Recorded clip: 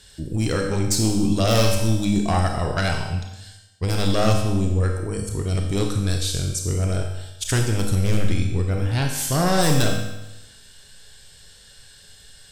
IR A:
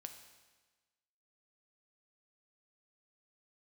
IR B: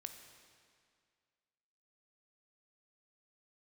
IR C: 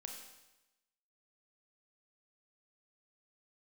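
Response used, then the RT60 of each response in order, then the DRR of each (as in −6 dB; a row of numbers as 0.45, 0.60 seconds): C; 1.3, 2.1, 1.0 seconds; 6.0, 6.0, 2.0 decibels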